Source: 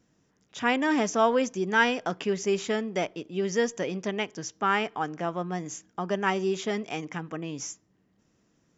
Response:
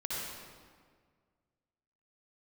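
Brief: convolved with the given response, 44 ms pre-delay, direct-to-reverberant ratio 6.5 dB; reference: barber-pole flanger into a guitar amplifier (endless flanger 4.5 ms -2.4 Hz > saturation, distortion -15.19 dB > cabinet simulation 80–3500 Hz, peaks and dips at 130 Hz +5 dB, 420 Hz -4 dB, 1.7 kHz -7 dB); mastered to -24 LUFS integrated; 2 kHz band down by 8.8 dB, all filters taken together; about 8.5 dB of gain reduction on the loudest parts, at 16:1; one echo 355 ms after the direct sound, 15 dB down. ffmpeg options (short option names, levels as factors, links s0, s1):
-filter_complex "[0:a]equalizer=f=2000:t=o:g=-6,acompressor=threshold=0.0447:ratio=16,aecho=1:1:355:0.178,asplit=2[s0][s1];[1:a]atrim=start_sample=2205,adelay=44[s2];[s1][s2]afir=irnorm=-1:irlink=0,volume=0.299[s3];[s0][s3]amix=inputs=2:normalize=0,asplit=2[s4][s5];[s5]adelay=4.5,afreqshift=-2.4[s6];[s4][s6]amix=inputs=2:normalize=1,asoftclip=threshold=0.0376,highpass=80,equalizer=f=130:t=q:w=4:g=5,equalizer=f=420:t=q:w=4:g=-4,equalizer=f=1700:t=q:w=4:g=-7,lowpass=f=3500:w=0.5412,lowpass=f=3500:w=1.3066,volume=5.62"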